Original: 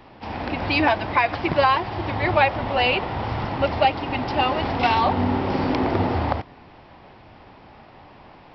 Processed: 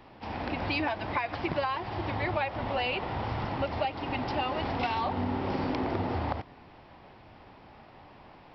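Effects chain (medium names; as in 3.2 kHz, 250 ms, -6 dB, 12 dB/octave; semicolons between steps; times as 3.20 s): compression, threshold -21 dBFS, peak gain reduction 8.5 dB; trim -5.5 dB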